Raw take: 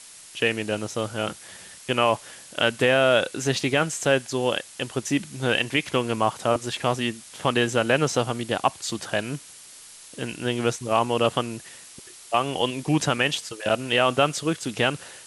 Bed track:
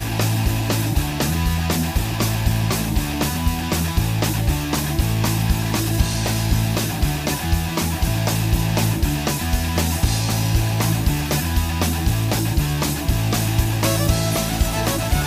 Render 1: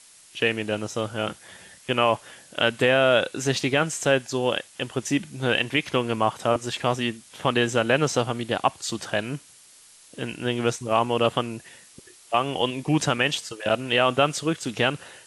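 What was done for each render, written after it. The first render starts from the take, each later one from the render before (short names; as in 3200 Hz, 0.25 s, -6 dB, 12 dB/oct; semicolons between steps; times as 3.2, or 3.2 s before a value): noise print and reduce 6 dB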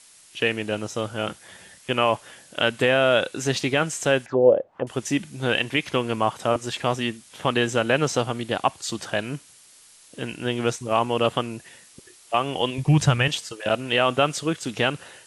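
4.26–4.87 envelope low-pass 550–2200 Hz down, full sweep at -24 dBFS; 12.78–13.28 resonant low shelf 170 Hz +11 dB, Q 1.5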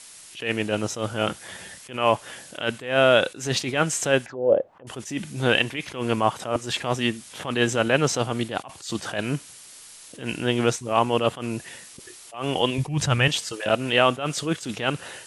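in parallel at +0.5 dB: compressor, threshold -27 dBFS, peak gain reduction 15.5 dB; on the sum: attack slew limiter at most 130 dB/s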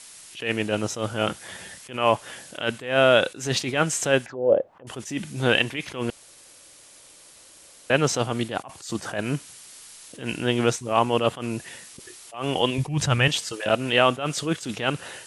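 6.1–7.9 room tone; 8.56–9.26 dynamic EQ 3400 Hz, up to -6 dB, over -49 dBFS, Q 1.4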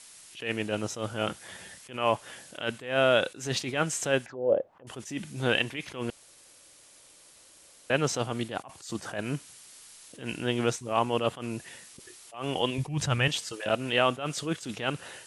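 gain -5.5 dB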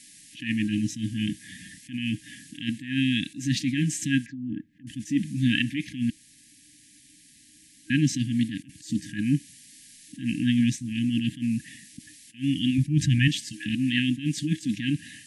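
FFT band-reject 320–1600 Hz; bell 280 Hz +12 dB 2.7 oct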